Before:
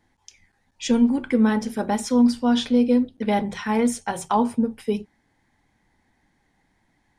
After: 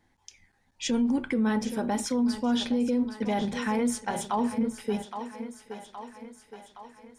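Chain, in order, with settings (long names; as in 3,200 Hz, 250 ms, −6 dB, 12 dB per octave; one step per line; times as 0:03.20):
feedback echo with a high-pass in the loop 818 ms, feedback 61%, high-pass 240 Hz, level −13.5 dB
brickwall limiter −17 dBFS, peak gain reduction 9 dB
level −2 dB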